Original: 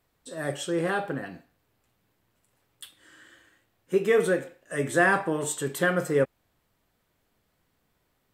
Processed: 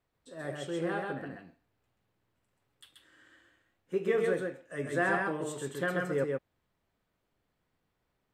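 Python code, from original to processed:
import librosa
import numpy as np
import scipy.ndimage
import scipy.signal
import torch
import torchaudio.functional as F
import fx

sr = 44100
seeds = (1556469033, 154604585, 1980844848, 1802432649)

p1 = fx.high_shelf(x, sr, hz=6300.0, db=-11.0)
p2 = p1 + fx.echo_single(p1, sr, ms=132, db=-3.0, dry=0)
y = p2 * 10.0 ** (-8.0 / 20.0)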